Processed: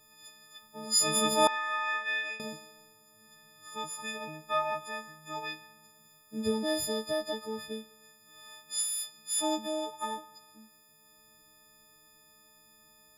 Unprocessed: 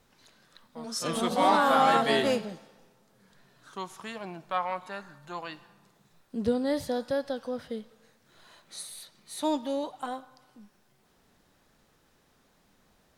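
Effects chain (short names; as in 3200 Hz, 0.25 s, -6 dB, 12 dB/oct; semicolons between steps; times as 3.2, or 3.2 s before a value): frequency quantiser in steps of 6 st; added harmonics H 8 -42 dB, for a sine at -7 dBFS; 1.47–2.4 band-pass 2000 Hz, Q 3.6; gain -3.5 dB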